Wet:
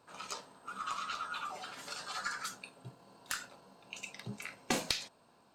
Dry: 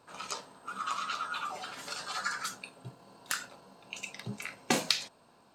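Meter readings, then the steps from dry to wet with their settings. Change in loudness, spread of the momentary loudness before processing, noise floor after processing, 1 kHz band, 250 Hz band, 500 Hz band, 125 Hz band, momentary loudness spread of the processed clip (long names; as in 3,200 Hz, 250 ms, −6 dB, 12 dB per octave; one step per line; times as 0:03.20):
−4.5 dB, 16 LU, −66 dBFS, −4.0 dB, −4.5 dB, −4.0 dB, −3.5 dB, 15 LU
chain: one-sided soft clipper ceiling −17 dBFS
level −3.5 dB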